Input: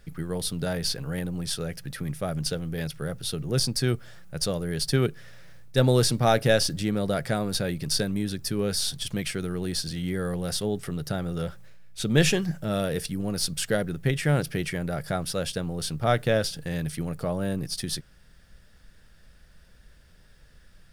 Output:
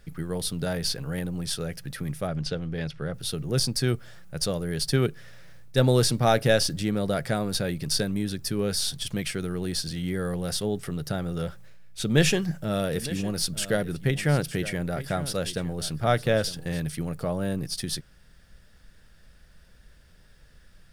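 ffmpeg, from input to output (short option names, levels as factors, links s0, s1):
-filter_complex "[0:a]asettb=1/sr,asplit=3[s0][s1][s2];[s0]atrim=end=2.274[s3];[s1]atrim=start=2.27:end=3.14,asetpts=PTS-STARTPTS,afade=t=in:d=0.004:c=qsin,afade=t=out:st=0.866:d=0.004:c=qsin,lowpass=4600[s4];[s2]atrim=start=3.136[s5];[s3][s4]acrossfade=d=0.004:c1=hsin:c2=qsin[s6];[s6][s5]acrossfade=d=0.004:c1=qsin:c2=hsin,asettb=1/sr,asplit=3[s7][s8][s9];[s7]atrim=end=12.024[s10];[s8]atrim=start=12.02:end=16.8,asetpts=PTS-STARTPTS,afade=t=in:d=0.004:c=qsin,afade=t=out:st=4.776:d=0.004:c=qsin,aecho=1:1:908:0.178,atrim=end_sample=210798[s11];[s9]atrim=start=16.796[s12];[s10][s11]acrossfade=d=0.004:c1=hsin:c2=qsin[s13];[s13][s12]acrossfade=d=0.004:c1=qsin:c2=hsin"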